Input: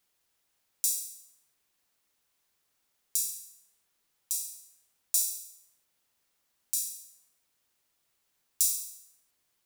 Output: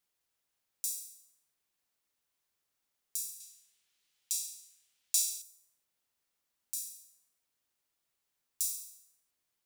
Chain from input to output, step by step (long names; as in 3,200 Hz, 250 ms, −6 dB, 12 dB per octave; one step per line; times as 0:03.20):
0:03.40–0:05.42: drawn EQ curve 1,100 Hz 0 dB, 3,000 Hz +12 dB, 7,400 Hz +7 dB, 12,000 Hz +2 dB
level −7.5 dB